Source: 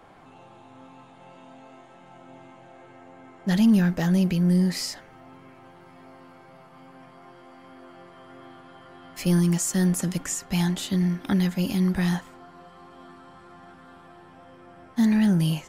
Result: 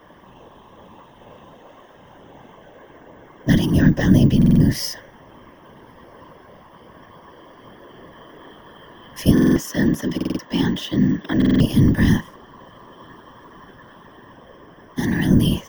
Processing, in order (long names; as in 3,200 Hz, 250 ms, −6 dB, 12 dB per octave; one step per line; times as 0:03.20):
EQ curve with evenly spaced ripples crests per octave 1.2, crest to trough 14 dB
random phases in short frames
0:09.31–0:11.59: three-way crossover with the lows and the highs turned down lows −13 dB, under 200 Hz, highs −14 dB, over 5,700 Hz
bad sample-rate conversion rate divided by 2×, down filtered, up hold
buffer that repeats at 0:04.37/0:09.33/0:10.16/0:11.37, samples 2,048, times 4
level +2 dB